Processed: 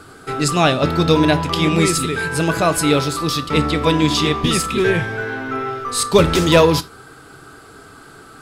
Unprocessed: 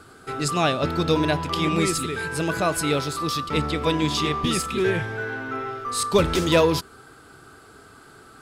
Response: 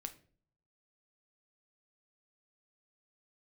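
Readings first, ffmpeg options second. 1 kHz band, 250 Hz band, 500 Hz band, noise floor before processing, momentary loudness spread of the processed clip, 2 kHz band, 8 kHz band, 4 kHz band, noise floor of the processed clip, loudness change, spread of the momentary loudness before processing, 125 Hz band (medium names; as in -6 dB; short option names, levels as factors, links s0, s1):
+5.5 dB, +7.0 dB, +6.0 dB, -49 dBFS, 10 LU, +6.0 dB, +6.5 dB, +6.5 dB, -43 dBFS, +6.5 dB, 9 LU, +7.5 dB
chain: -filter_complex "[0:a]asplit=2[s0][s1];[1:a]atrim=start_sample=2205,afade=t=out:st=0.14:d=0.01,atrim=end_sample=6615[s2];[s1][s2]afir=irnorm=-1:irlink=0,volume=2.11[s3];[s0][s3]amix=inputs=2:normalize=0,volume=0.891"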